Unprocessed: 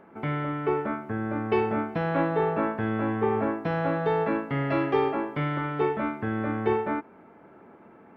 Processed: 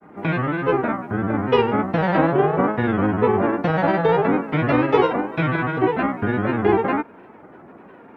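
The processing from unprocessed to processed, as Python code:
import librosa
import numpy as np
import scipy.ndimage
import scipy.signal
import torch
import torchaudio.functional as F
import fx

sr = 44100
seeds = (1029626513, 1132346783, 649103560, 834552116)

y = fx.granulator(x, sr, seeds[0], grain_ms=100.0, per_s=20.0, spray_ms=23.0, spread_st=3)
y = F.gain(torch.from_numpy(y), 8.5).numpy()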